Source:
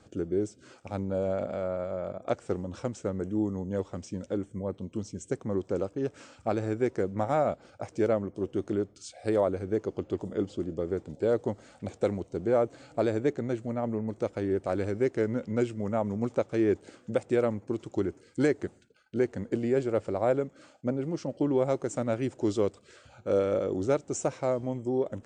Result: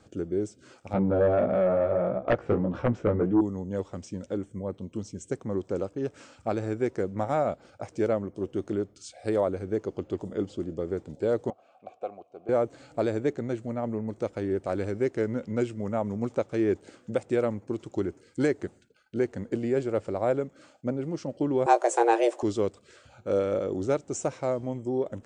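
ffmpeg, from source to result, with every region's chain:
ffmpeg -i in.wav -filter_complex "[0:a]asettb=1/sr,asplit=3[link_01][link_02][link_03];[link_01]atrim=end=0.934[link_04];[link_02]atrim=start=0.93:end=3.41,asetpts=PTS-STARTPTS,afade=type=in:duration=0.004:curve=qsin,afade=type=out:start_time=2.476:duration=0.004:curve=qsin,lowpass=1900,flanger=delay=15.5:depth=3.4:speed=1.6,aeval=exprs='0.158*sin(PI/2*2.51*val(0)/0.158)':channel_layout=same[link_05];[link_03]atrim=start=3.406[link_06];[link_04][link_05]acrossfade=duration=0.004:curve1=hsin:curve2=qsin[link_07];[link_07][link_06]acrossfade=duration=0.004:curve1=qsin:curve2=hsin,asettb=1/sr,asplit=3[link_08][link_09][link_10];[link_08]atrim=end=11.504[link_11];[link_09]atrim=start=11.5:end=12.49,asetpts=PTS-STARTPTS,afade=type=in:duration=0.004:curve=qsin,afade=type=out:start_time=0.986:duration=0.004:curve=qsin,acontrast=29,asplit=3[link_12][link_13][link_14];[link_12]bandpass=frequency=730:width_type=q:width=8,volume=0dB[link_15];[link_13]bandpass=frequency=1090:width_type=q:width=8,volume=-6dB[link_16];[link_14]bandpass=frequency=2440:width_type=q:width=8,volume=-9dB[link_17];[link_15][link_16][link_17]amix=inputs=3:normalize=0[link_18];[link_10]atrim=start=12.486[link_19];[link_11][link_18]acrossfade=duration=0.004:curve1=hsin:curve2=qsin[link_20];[link_20][link_19]acrossfade=duration=0.004:curve1=qsin:curve2=hsin,asettb=1/sr,asplit=3[link_21][link_22][link_23];[link_21]atrim=end=21.664[link_24];[link_22]atrim=start=21.66:end=22.43,asetpts=PTS-STARTPTS,afade=type=in:duration=0.004:curve=qsin,afade=type=out:start_time=0.766:duration=0.004:curve=qsin,afreqshift=230,acontrast=85,asplit=2[link_25][link_26];[link_26]adelay=17,volume=-9.5dB[link_27];[link_25][link_27]amix=inputs=2:normalize=0,atrim=end_sample=33957[link_28];[link_23]atrim=start=22.426[link_29];[link_24][link_28]acrossfade=duration=0.004:curve1=hsin:curve2=qsin[link_30];[link_30][link_29]acrossfade=duration=0.004:curve1=qsin:curve2=hsin" out.wav

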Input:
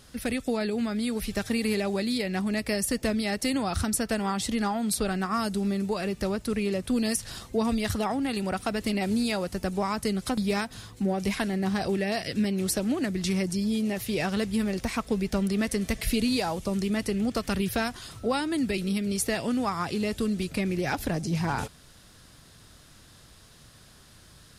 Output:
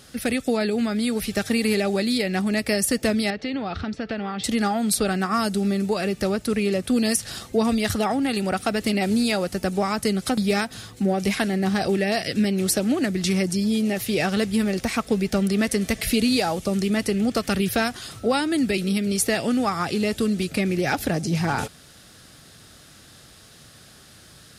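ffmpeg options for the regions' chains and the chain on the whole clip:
ffmpeg -i in.wav -filter_complex "[0:a]asettb=1/sr,asplit=3[link_01][link_02][link_03];[link_01]atrim=end=3.304[link_04];[link_02]atrim=start=3.3:end=4.44,asetpts=PTS-STARTPTS,afade=type=in:duration=0.004:curve=qsin,afade=type=out:start_time=1.136:duration=0.004:curve=qsin,acompressor=threshold=-30dB:ratio=3:attack=3.2:release=140:knee=1:detection=peak,lowpass=frequency=3900:width=0.5412,lowpass=frequency=3900:width=1.3066,aeval=exprs='val(0)+0.00141*sin(2*PI*440*n/s)':channel_layout=same[link_05];[link_03]atrim=start=4.436[link_06];[link_04][link_05]acrossfade=duration=0.004:curve1=hsin:curve2=qsin[link_07];[link_07][link_06]acrossfade=duration=0.004:curve1=qsin:curve2=hsin,highpass=frequency=120:poles=1,bandreject=frequency=1000:width=6.9,volume=6dB" out.wav

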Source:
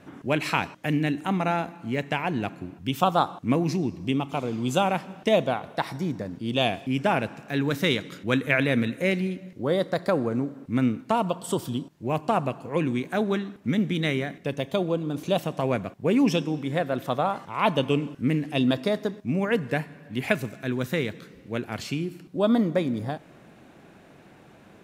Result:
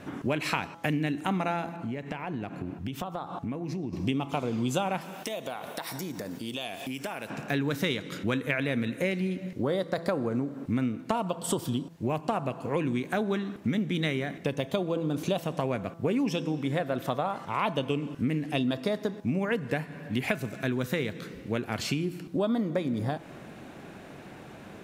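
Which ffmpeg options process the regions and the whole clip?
ffmpeg -i in.wav -filter_complex "[0:a]asettb=1/sr,asplit=3[link_01][link_02][link_03];[link_01]atrim=end=1.764[link_04];[link_02]atrim=start=1.76:end=3.93,asetpts=PTS-STARTPTS,afade=type=in:duration=0.004:curve=qsin,afade=type=out:start_time=2.166:duration=0.004:curve=qsin,acompressor=threshold=-35dB:ratio=12:attack=3.2:release=140:knee=1:detection=peak,highshelf=frequency=2600:gain=-7.5[link_05];[link_03]atrim=start=3.926[link_06];[link_04][link_05]acrossfade=duration=0.004:curve1=hsin:curve2=qsin[link_07];[link_07][link_06]acrossfade=duration=0.004:curve1=qsin:curve2=hsin,asettb=1/sr,asplit=3[link_08][link_09][link_10];[link_08]atrim=end=5.014[link_11];[link_09]atrim=start=5.01:end=7.3,asetpts=PTS-STARTPTS,afade=type=in:duration=0.004:curve=qsin,afade=type=out:start_time=2.286:duration=0.004:curve=qsin,aemphasis=mode=production:type=bsi,acompressor=threshold=-38dB:ratio=6:attack=3.2:release=140:knee=1:detection=peak[link_12];[link_10]atrim=start=7.296[link_13];[link_11][link_12]acrossfade=duration=0.004:curve1=hsin:curve2=qsin[link_14];[link_14][link_13]acrossfade=duration=0.004:curve1=qsin:curve2=hsin,bandreject=frequency=166.8:width_type=h:width=4,bandreject=frequency=333.6:width_type=h:width=4,bandreject=frequency=500.4:width_type=h:width=4,bandreject=frequency=667.2:width_type=h:width=4,bandreject=frequency=834:width_type=h:width=4,bandreject=frequency=1000.8:width_type=h:width=4,bandreject=frequency=1167.6:width_type=h:width=4,bandreject=frequency=1334.4:width_type=h:width=4,bandreject=frequency=1501.2:width_type=h:width=4,acompressor=threshold=-32dB:ratio=5,volume=6dB" out.wav

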